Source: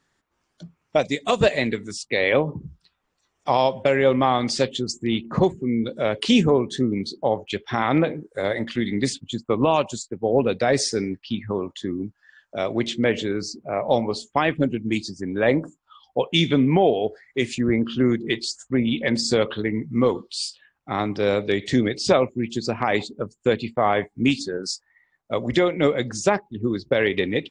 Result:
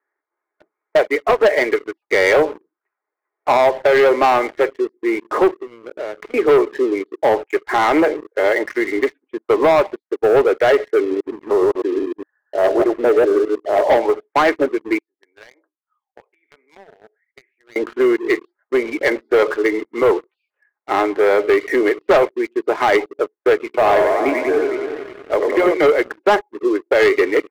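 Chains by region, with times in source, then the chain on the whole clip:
5.59–6.34 BPF 110–2200 Hz + compressor 4:1, threshold -35 dBFS
11–13.94 reverse delay 0.102 s, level -0.5 dB + LPF 1200 Hz 24 dB/oct
14.98–17.76 pre-emphasis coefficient 0.97 + compressor 12:1, threshold -42 dBFS
23.64–25.74 notches 60/120/180/240/300/360/420/480/540 Hz + dynamic EQ 1600 Hz, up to -6 dB, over -35 dBFS, Q 0.89 + warbling echo 91 ms, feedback 75%, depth 200 cents, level -5.5 dB
whole clip: Chebyshev band-pass 310–2200 Hz, order 5; comb 4.8 ms, depth 32%; sample leveller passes 3

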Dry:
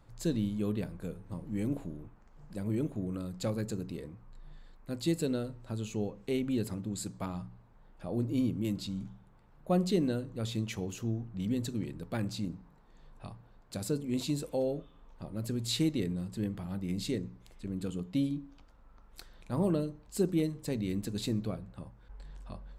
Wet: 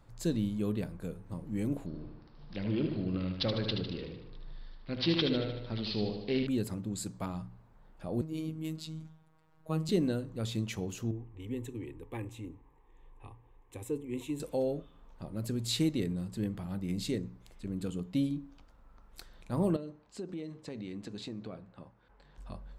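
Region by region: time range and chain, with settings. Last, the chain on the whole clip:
1.86–6.47 bell 7700 Hz +13 dB 1.1 oct + feedback echo 76 ms, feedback 57%, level -6 dB + careless resampling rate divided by 4×, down none, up filtered
8.21–9.89 low shelf 230 Hz -5 dB + robotiser 158 Hz
11.11–14.4 high shelf 4900 Hz -6 dB + fixed phaser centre 950 Hz, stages 8
19.76–22.38 HPF 290 Hz 6 dB/oct + compressor 5:1, threshold -36 dBFS + air absorption 110 m
whole clip: dry

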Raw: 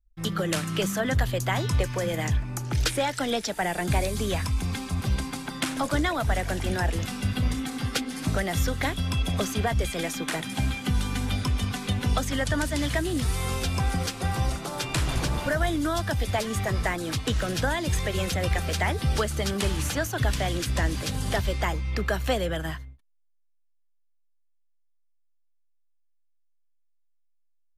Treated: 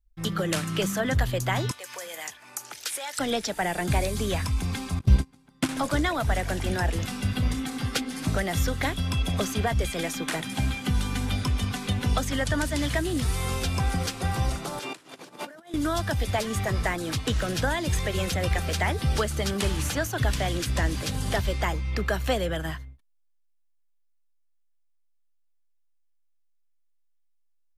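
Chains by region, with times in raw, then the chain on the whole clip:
1.71–3.19 compressor 4:1, threshold -30 dBFS + HPF 690 Hz + high shelf 5400 Hz +9.5 dB
4.99–5.69 gate -28 dBFS, range -29 dB + low shelf 430 Hz +8.5 dB
14.79–15.74 negative-ratio compressor -32 dBFS, ratio -0.5 + ladder high-pass 210 Hz, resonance 25%
whole clip: dry

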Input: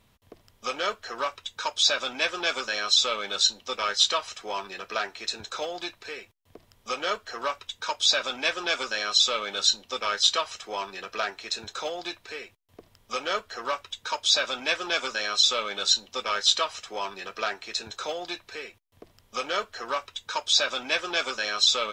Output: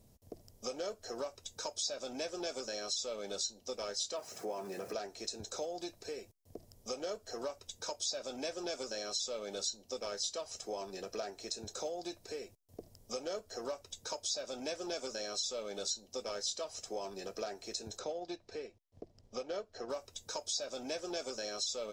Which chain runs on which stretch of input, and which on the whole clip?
4.16–4.93 zero-crossing step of -39.5 dBFS + HPF 110 Hz 24 dB/oct + resonant high shelf 2700 Hz -6.5 dB, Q 1.5
17.99–19.9 LPF 4300 Hz + transient shaper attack -1 dB, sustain -6 dB
whole clip: band shelf 1900 Hz -16 dB 2.3 oct; compressor 3:1, threshold -39 dBFS; gain +1 dB

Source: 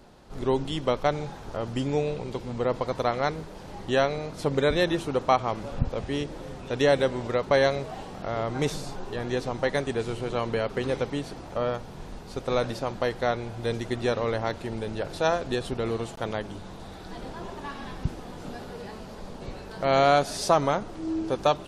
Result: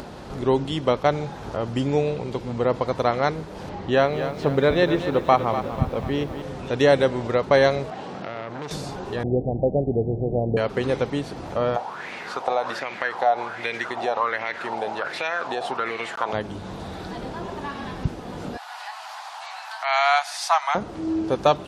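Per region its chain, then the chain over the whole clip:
3.69–6.42 air absorption 98 m + lo-fi delay 0.246 s, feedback 55%, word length 8-bit, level -10 dB
7.9–8.71 BPF 140–6700 Hz + compressor 3:1, threshold -31 dBFS + core saturation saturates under 1600 Hz
9.23–10.57 steep low-pass 770 Hz 72 dB/oct + low shelf 150 Hz +8.5 dB
11.76–16.33 weighting filter A + compressor 5:1, threshold -31 dBFS + LFO bell 1.3 Hz 720–2300 Hz +18 dB
18.57–20.75 steep high-pass 720 Hz 72 dB/oct + dynamic EQ 2100 Hz, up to +6 dB, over -46 dBFS, Q 2.5
whole clip: HPF 54 Hz; high shelf 5300 Hz -6 dB; upward compressor, threshold -32 dBFS; gain +4.5 dB

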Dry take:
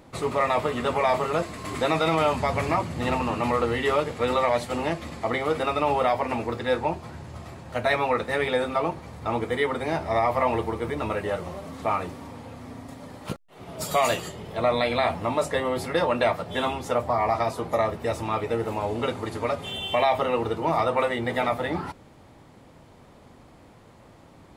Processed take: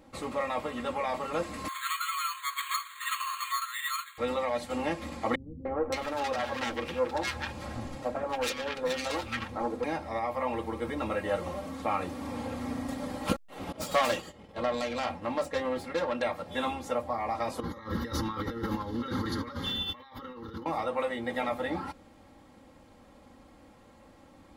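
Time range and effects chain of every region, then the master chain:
1.68–4.18 brick-wall FIR high-pass 1000 Hz + careless resampling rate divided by 8×, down filtered, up hold
5.35–9.84 self-modulated delay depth 0.33 ms + three bands offset in time lows, mids, highs 0.3/0.57 s, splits 220/1300 Hz
13.72–16.22 self-modulated delay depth 0.15 ms + expander -32 dBFS + high shelf 8400 Hz -7 dB
17.6–20.66 negative-ratio compressor -34 dBFS + fixed phaser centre 2500 Hz, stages 6
whole clip: vocal rider 0.5 s; comb 3.7 ms, depth 61%; gain -6.5 dB

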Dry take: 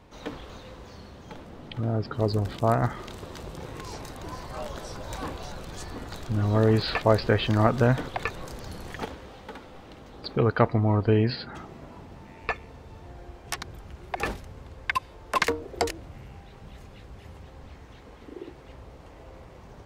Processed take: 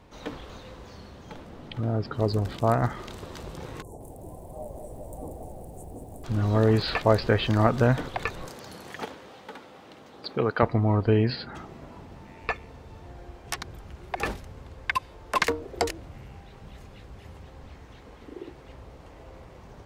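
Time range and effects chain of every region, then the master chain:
3.82–6.24 elliptic band-stop 720–8900 Hz + low shelf 500 Hz -4 dB + lo-fi delay 0.184 s, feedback 55%, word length 10-bit, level -7 dB
8.49–10.63 HPF 130 Hz + low shelf 280 Hz -4.5 dB
whole clip: dry

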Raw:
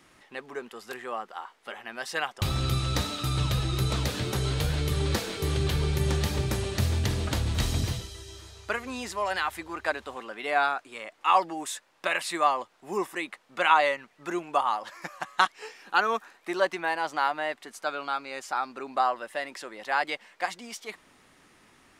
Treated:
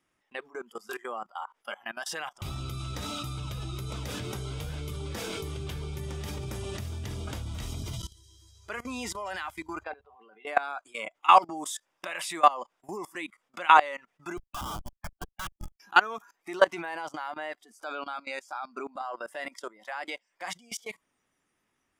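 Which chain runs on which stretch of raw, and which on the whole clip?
9.84–10.47 LPF 4200 Hz + level quantiser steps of 15 dB + small resonant body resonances 440/760/2700 Hz, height 10 dB, ringing for 90 ms
14.37–15.8 HPF 1500 Hz + Schmitt trigger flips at -36.5 dBFS
whole clip: spectral noise reduction 16 dB; notch 4200 Hz, Q 6.5; level quantiser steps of 21 dB; gain +6.5 dB

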